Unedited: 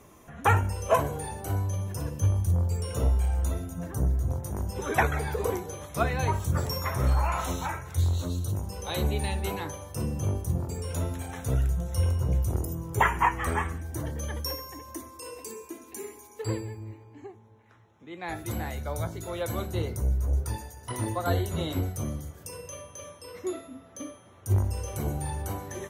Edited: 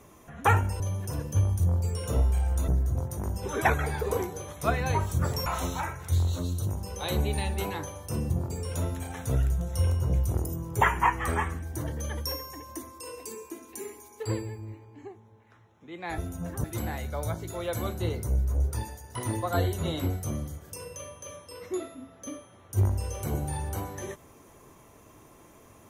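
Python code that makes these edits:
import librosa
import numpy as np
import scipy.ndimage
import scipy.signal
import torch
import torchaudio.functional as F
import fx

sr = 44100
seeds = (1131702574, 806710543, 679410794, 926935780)

y = fx.edit(x, sr, fx.cut(start_s=0.8, length_s=0.87),
    fx.move(start_s=3.55, length_s=0.46, to_s=18.37),
    fx.cut(start_s=6.79, length_s=0.53),
    fx.cut(start_s=10.16, length_s=0.33), tone=tone)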